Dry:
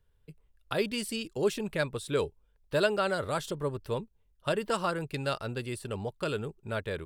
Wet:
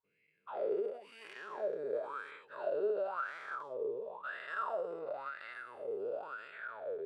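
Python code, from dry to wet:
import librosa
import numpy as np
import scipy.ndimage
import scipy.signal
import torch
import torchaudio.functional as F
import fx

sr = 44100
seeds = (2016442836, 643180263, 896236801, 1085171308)

y = fx.spec_dilate(x, sr, span_ms=480)
y = fx.wah_lfo(y, sr, hz=0.96, low_hz=410.0, high_hz=2000.0, q=11.0)
y = fx.end_taper(y, sr, db_per_s=110.0)
y = y * 10.0 ** (-3.0 / 20.0)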